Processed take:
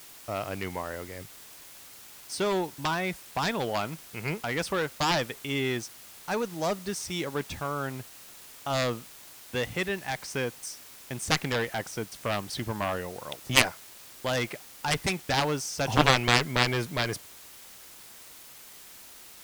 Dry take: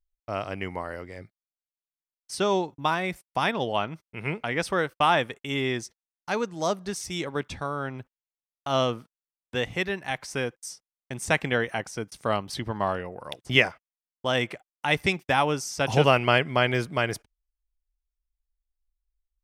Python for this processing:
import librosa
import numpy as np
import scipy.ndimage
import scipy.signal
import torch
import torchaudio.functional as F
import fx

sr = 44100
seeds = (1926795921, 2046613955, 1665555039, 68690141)

y = fx.quant_dither(x, sr, seeds[0], bits=8, dither='triangular')
y = fx.cheby_harmonics(y, sr, harmonics=(7,), levels_db=(-11,), full_scale_db=-2.0)